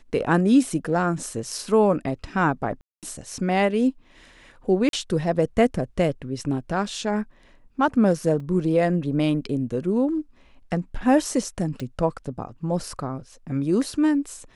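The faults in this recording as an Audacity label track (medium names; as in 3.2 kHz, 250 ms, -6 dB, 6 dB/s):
2.810000	3.030000	dropout 217 ms
4.890000	4.930000	dropout 42 ms
8.400000	8.400000	dropout 3.1 ms
11.800000	11.800000	pop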